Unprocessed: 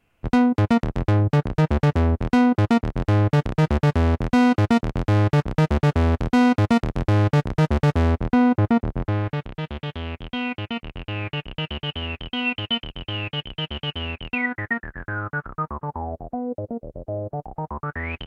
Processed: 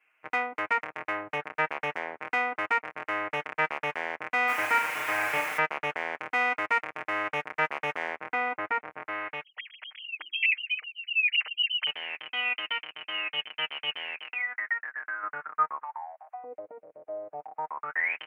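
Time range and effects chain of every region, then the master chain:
0:04.47–0:05.57: background noise pink −30 dBFS + flutter between parallel walls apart 6.4 metres, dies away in 0.38 s
0:09.43–0:11.87: three sine waves on the formant tracks + mains-hum notches 50/100/150/200/250/300/350 Hz
0:14.21–0:15.23: high-pass filter 410 Hz 6 dB per octave + downward compressor 4 to 1, threshold −32 dBFS
0:15.83–0:16.44: Butterworth high-pass 750 Hz + multiband upward and downward compressor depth 40%
whole clip: high-pass filter 980 Hz 12 dB per octave; high shelf with overshoot 3,000 Hz −9.5 dB, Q 3; comb filter 6.5 ms, depth 93%; level −3 dB

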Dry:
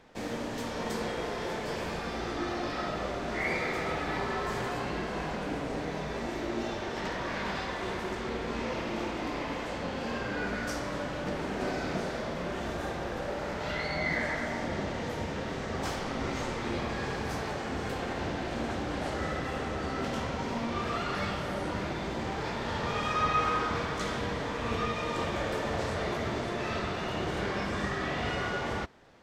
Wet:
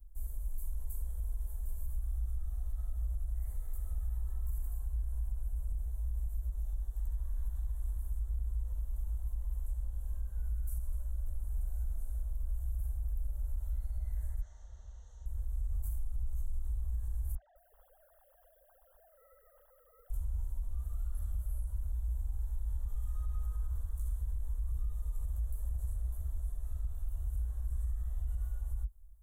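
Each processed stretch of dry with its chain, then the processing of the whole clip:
0:14.41–0:15.26: Chebyshev low-pass filter 6,300 Hz, order 5 + spectral tilt +3.5 dB per octave
0:17.35–0:20.10: three sine waves on the formant tracks + feedback echo at a low word length 209 ms, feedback 55%, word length 10 bits, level −14 dB
whole clip: inverse Chebyshev band-stop filter 120–5,300 Hz, stop band 50 dB; bass and treble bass +4 dB, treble −8 dB; brickwall limiter −45.5 dBFS; level +17.5 dB

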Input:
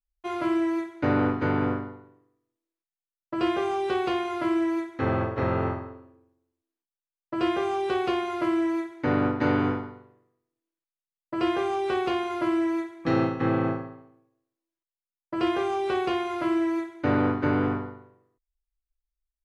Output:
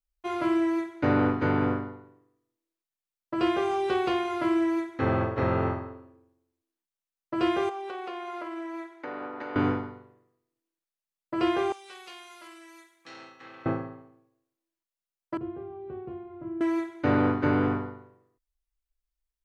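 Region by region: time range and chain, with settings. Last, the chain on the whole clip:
0:07.69–0:09.56: high-pass filter 500 Hz + downward compressor, threshold −32 dBFS + high-shelf EQ 2,400 Hz −7.5 dB
0:11.72–0:13.66: first difference + saturating transformer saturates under 1,400 Hz
0:15.37–0:16.61: resonant band-pass 110 Hz, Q 1.1 + high-frequency loss of the air 210 metres
whole clip: no processing

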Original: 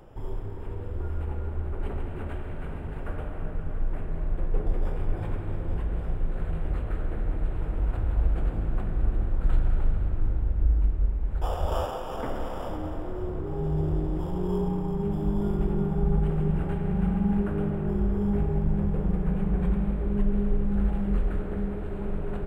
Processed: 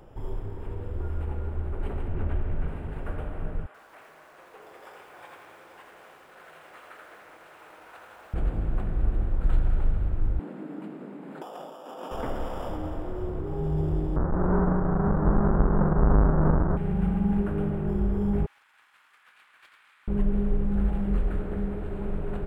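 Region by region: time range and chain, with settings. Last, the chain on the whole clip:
0:02.08–0:02.68: low-pass filter 2,800 Hz 6 dB per octave + low-shelf EQ 130 Hz +8 dB
0:03.66–0:08.34: high-pass filter 1,000 Hz + feedback echo at a low word length 82 ms, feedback 35%, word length 10 bits, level −3.5 dB
0:10.39–0:12.11: linear-phase brick-wall high-pass 160 Hz + parametric band 280 Hz +7.5 dB 0.34 octaves + compressor whose output falls as the input rises −39 dBFS
0:14.16–0:16.77: each half-wave held at its own peak + Butterworth low-pass 1,500 Hz 48 dB per octave
0:18.46–0:20.08: Bessel high-pass filter 2,100 Hz, order 8 + highs frequency-modulated by the lows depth 0.16 ms
whole clip: no processing

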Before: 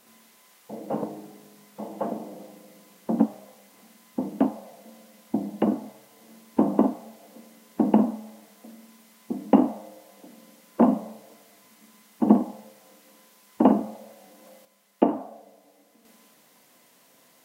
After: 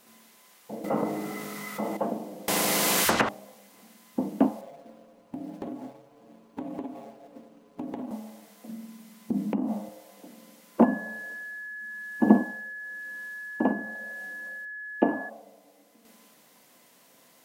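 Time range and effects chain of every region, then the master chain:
0:00.84–0:01.97: hollow resonant body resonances 1,300/2,000 Hz, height 16 dB, ringing for 30 ms + envelope flattener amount 50%
0:02.48–0:03.29: upward compression, threshold −45 dBFS + treble cut that deepens with the level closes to 1,700 Hz, closed at −16 dBFS + every bin compressed towards the loudest bin 10 to 1
0:04.61–0:08.11: running median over 25 samples + comb filter 7.2 ms, depth 80% + downward compressor, threshold −33 dBFS
0:08.69–0:09.89: downward compressor 20 to 1, threshold −28 dBFS + parametric band 190 Hz +11.5 dB 0.94 octaves
0:10.83–0:15.28: shaped tremolo triangle 1 Hz, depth 70% + steady tone 1,700 Hz −36 dBFS
whole clip: no processing

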